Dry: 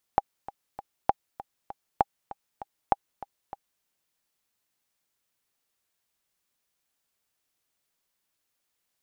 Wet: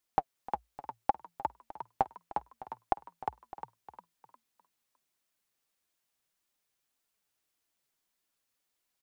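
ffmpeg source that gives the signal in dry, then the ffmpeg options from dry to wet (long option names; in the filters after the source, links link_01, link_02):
-f lavfi -i "aevalsrc='pow(10,(-6.5-17.5*gte(mod(t,3*60/197),60/197))/20)*sin(2*PI*805*mod(t,60/197))*exp(-6.91*mod(t,60/197)/0.03)':duration=3.65:sample_rate=44100"
-filter_complex "[0:a]flanger=delay=2.8:depth=5.1:regen=39:speed=1.7:shape=sinusoidal,asplit=5[link_01][link_02][link_03][link_04][link_05];[link_02]adelay=355,afreqshift=56,volume=-5dB[link_06];[link_03]adelay=710,afreqshift=112,volume=-14.1dB[link_07];[link_04]adelay=1065,afreqshift=168,volume=-23.2dB[link_08];[link_05]adelay=1420,afreqshift=224,volume=-32.4dB[link_09];[link_01][link_06][link_07][link_08][link_09]amix=inputs=5:normalize=0"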